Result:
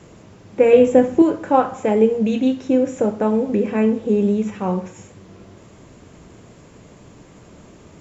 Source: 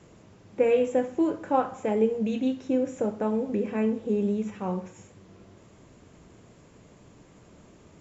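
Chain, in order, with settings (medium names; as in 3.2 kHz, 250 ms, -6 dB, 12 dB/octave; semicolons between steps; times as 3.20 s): 0.73–1.22 s: bass shelf 400 Hz +7.5 dB; trim +8.5 dB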